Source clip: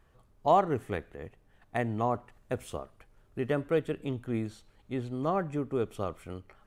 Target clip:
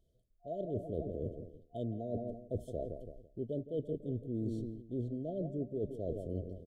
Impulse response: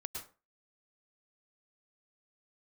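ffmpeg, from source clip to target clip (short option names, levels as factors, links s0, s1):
-filter_complex "[0:a]afwtdn=0.0112,asplit=2[s0][s1];[s1]adelay=167,lowpass=f=1100:p=1,volume=0.224,asplit=2[s2][s3];[s3]adelay=167,lowpass=f=1100:p=1,volume=0.51,asplit=2[s4][s5];[s5]adelay=167,lowpass=f=1100:p=1,volume=0.51,asplit=2[s6][s7];[s7]adelay=167,lowpass=f=1100:p=1,volume=0.51,asplit=2[s8][s9];[s9]adelay=167,lowpass=f=1100:p=1,volume=0.51[s10];[s0][s2][s4][s6][s8][s10]amix=inputs=6:normalize=0,areverse,acompressor=threshold=0.00891:ratio=12,areverse,afftfilt=real='re*(1-between(b*sr/4096,710,3000))':imag='im*(1-between(b*sr/4096,710,3000))':win_size=4096:overlap=0.75,volume=2.37"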